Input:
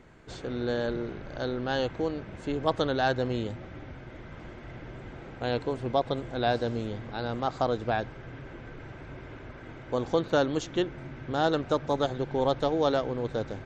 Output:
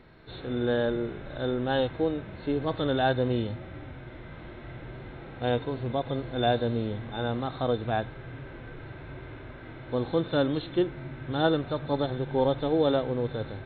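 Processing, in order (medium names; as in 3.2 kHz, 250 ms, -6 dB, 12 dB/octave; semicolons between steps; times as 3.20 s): knee-point frequency compression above 3.5 kHz 4:1; harmonic-percussive split percussive -11 dB; trim +4 dB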